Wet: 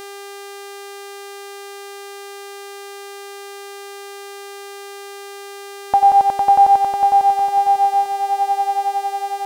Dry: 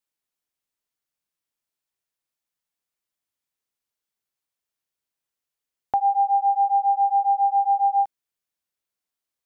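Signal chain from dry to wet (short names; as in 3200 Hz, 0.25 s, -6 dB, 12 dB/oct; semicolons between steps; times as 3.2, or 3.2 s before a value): swelling echo 91 ms, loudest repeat 5, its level -3.5 dB; buzz 400 Hz, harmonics 39, -42 dBFS -5 dB/oct; gain +7.5 dB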